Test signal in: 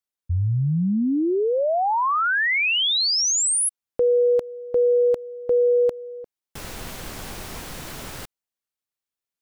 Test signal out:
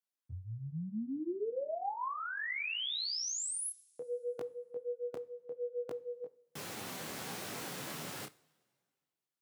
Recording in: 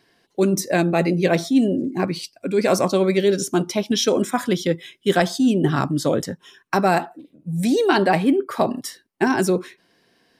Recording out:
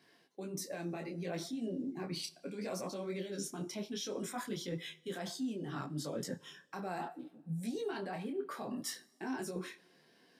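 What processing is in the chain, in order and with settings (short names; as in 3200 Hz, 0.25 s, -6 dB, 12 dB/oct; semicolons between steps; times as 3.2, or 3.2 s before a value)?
HPF 130 Hz 24 dB/oct; limiter -16 dBFS; reverse; compressor 10:1, threshold -31 dBFS; reverse; two-slope reverb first 0.42 s, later 1.9 s, from -16 dB, DRR 15.5 dB; detuned doubles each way 23 cents; gain -2 dB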